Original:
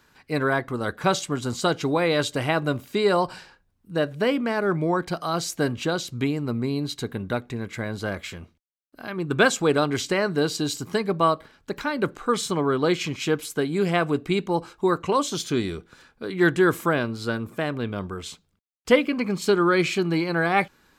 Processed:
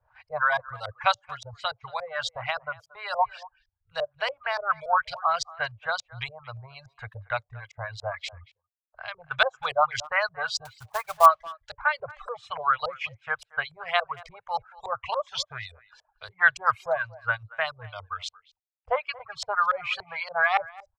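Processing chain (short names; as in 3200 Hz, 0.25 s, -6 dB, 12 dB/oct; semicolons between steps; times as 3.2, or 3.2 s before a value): reverb removal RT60 0.76 s; LFO low-pass saw up 3.5 Hz 370–5900 Hz; reverb removal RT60 0.72 s; dynamic EQ 1200 Hz, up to +5 dB, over -33 dBFS, Q 1.2; 1.28–3.19 compressor 2:1, threshold -26 dBFS, peak gain reduction 7 dB; 10.65–11.26 short-mantissa float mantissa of 2-bit; elliptic band-stop 110–640 Hz, stop band 50 dB; speakerphone echo 0.23 s, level -21 dB; gain -2 dB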